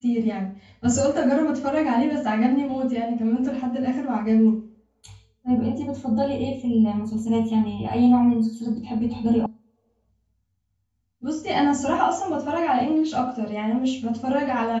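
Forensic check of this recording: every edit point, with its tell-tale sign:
9.46 s: sound stops dead

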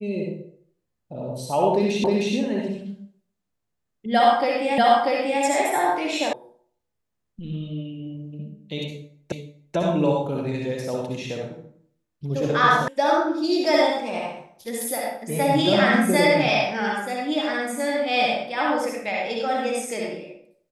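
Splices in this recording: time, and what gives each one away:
2.04 s: repeat of the last 0.31 s
4.78 s: repeat of the last 0.64 s
6.33 s: sound stops dead
9.32 s: repeat of the last 0.44 s
12.88 s: sound stops dead

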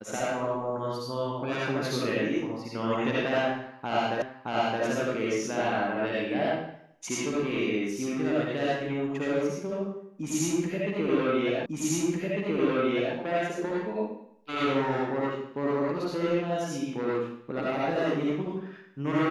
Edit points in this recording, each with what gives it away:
4.22 s: repeat of the last 0.62 s
11.66 s: repeat of the last 1.5 s

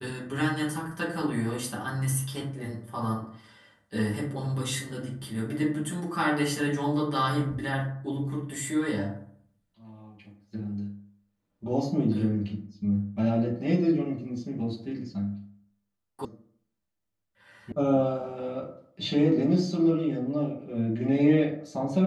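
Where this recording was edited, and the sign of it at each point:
16.25 s: sound stops dead
17.72 s: sound stops dead

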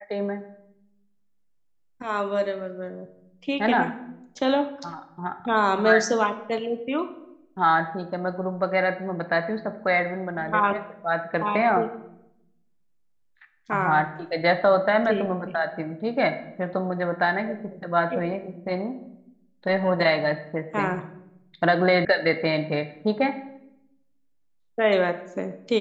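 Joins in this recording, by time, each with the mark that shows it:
22.05 s: sound stops dead

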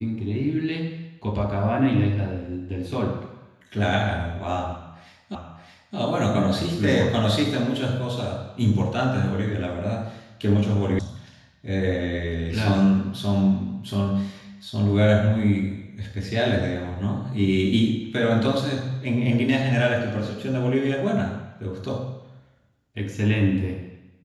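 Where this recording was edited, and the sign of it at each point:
5.35 s: repeat of the last 0.62 s
10.99 s: sound stops dead

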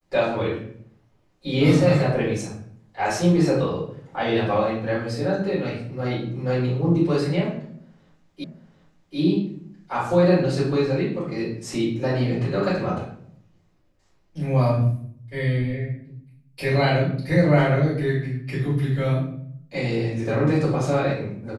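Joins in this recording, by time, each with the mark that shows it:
8.44 s: repeat of the last 0.74 s

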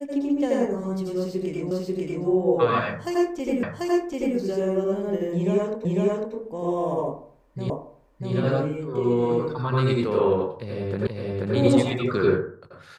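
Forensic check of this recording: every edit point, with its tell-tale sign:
1.71 s: repeat of the last 0.54 s
3.63 s: repeat of the last 0.74 s
5.85 s: repeat of the last 0.5 s
7.70 s: repeat of the last 0.64 s
11.07 s: repeat of the last 0.48 s

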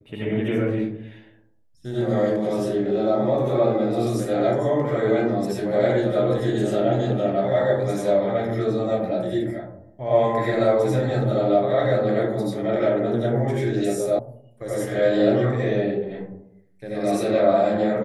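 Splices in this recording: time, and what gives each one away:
14.19 s: sound stops dead

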